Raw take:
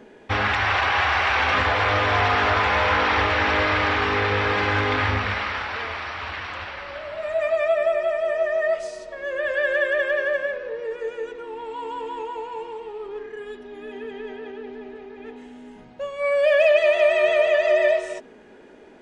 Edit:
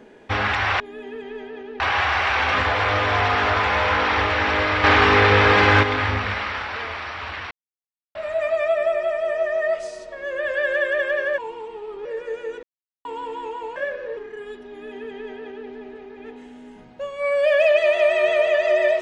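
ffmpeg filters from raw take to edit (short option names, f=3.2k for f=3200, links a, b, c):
-filter_complex "[0:a]asplit=13[a][b][c][d][e][f][g][h][i][j][k][l][m];[a]atrim=end=0.802[n];[b]atrim=start=13.688:end=14.692[o];[c]atrim=start=0.798:end=3.842[p];[d]atrim=start=3.838:end=4.832,asetpts=PTS-STARTPTS,volume=7dB[q];[e]atrim=start=4.828:end=6.51,asetpts=PTS-STARTPTS,afade=t=out:st=1.678:d=0.004:c=hsin[r];[f]atrim=start=6.51:end=7.15,asetpts=PTS-STARTPTS,volume=0[s];[g]atrim=start=7.15:end=10.382,asetpts=PTS-STARTPTS,afade=t=in:d=0.004:c=hsin[t];[h]atrim=start=12.498:end=13.172[u];[i]atrim=start=10.788:end=11.37,asetpts=PTS-STARTPTS,afade=t=out:st=0.578:d=0.004:c=hsin[v];[j]atrim=start=11.37:end=11.79,asetpts=PTS-STARTPTS,volume=0[w];[k]atrim=start=11.79:end=12.502,asetpts=PTS-STARTPTS,afade=t=in:d=0.004:c=hsin[x];[l]atrim=start=10.378:end=10.792[y];[m]atrim=start=13.168[z];[n][o]acrossfade=d=0.004:c1=hsin:c2=hsin[aa];[aa][p]acrossfade=d=0.004:c1=hsin:c2=hsin[ab];[ab][q]acrossfade=d=0.004:c1=hsin:c2=hsin[ac];[r][s][t]concat=n=3:v=0:a=1[ad];[ac][ad]acrossfade=d=0.004:c1=hsin:c2=hsin[ae];[ae][u]acrossfade=d=0.004:c1=hsin:c2=hsin[af];[v][w][x]concat=n=3:v=0:a=1[ag];[af][ag]acrossfade=d=0.004:c1=hsin:c2=hsin[ah];[ah][y]acrossfade=d=0.004:c1=hsin:c2=hsin[ai];[ai][z]acrossfade=d=0.004:c1=hsin:c2=hsin"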